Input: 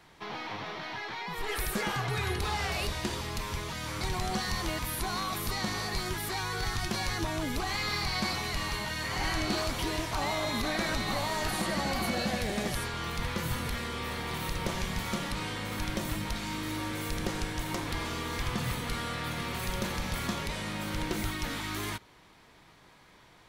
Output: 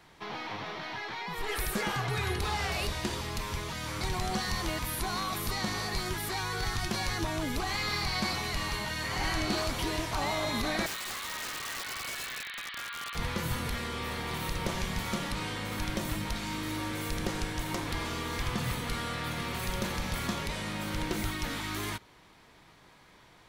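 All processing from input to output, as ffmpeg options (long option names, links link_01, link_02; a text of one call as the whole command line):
ffmpeg -i in.wav -filter_complex "[0:a]asettb=1/sr,asplit=3[link_01][link_02][link_03];[link_01]atrim=end=10.864[link_04];[link_02]atrim=start=10.86:end=13.15,asetpts=PTS-STARTPTS,afade=type=in:duration=0.004:curve=qsin,afade=type=out:start_time=2.286:duration=0.004:curve=qsin,asuperpass=centerf=2100:order=12:qfactor=0.7,aeval=exprs='(mod(35.5*val(0)+1,2)-1)/35.5':channel_layout=same[link_05];[link_03]atrim=start=13.146[link_06];[link_04][link_05]acrossfade=duration=0.004:curve1=hsin:curve2=qsin[link_07];[link_07][link_06]acrossfade=duration=0.004:curve1=qsin:curve2=hsin" out.wav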